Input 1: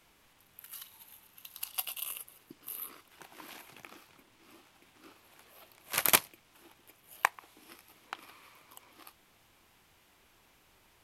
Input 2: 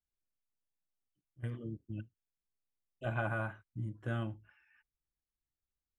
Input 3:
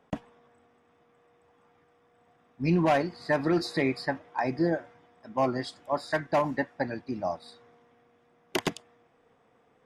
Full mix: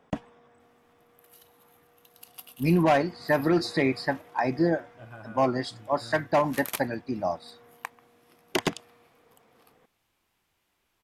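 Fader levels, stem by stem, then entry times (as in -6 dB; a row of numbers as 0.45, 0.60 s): -10.0, -10.5, +2.5 dB; 0.60, 1.95, 0.00 s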